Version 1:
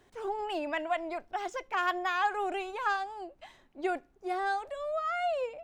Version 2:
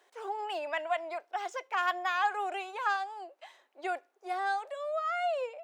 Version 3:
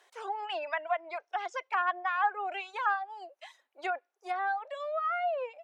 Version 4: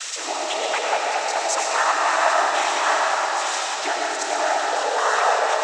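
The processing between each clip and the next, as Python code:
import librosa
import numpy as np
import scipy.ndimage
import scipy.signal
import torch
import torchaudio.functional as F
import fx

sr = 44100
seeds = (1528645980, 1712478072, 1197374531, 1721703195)

y1 = scipy.signal.sosfilt(scipy.signal.butter(4, 460.0, 'highpass', fs=sr, output='sos'), x)
y2 = fx.env_lowpass_down(y1, sr, base_hz=1600.0, full_db=-28.5)
y2 = fx.dereverb_blind(y2, sr, rt60_s=0.97)
y2 = fx.low_shelf(y2, sr, hz=440.0, db=-12.0)
y2 = F.gain(torch.from_numpy(y2), 4.5).numpy()
y3 = y2 + 0.5 * 10.0 ** (-23.0 / 20.0) * np.diff(np.sign(y2), prepend=np.sign(y2[:1]))
y3 = fx.noise_vocoder(y3, sr, seeds[0], bands=12)
y3 = fx.rev_freeverb(y3, sr, rt60_s=4.6, hf_ratio=0.5, predelay_ms=55, drr_db=-3.0)
y3 = F.gain(torch.from_numpy(y3), 7.0).numpy()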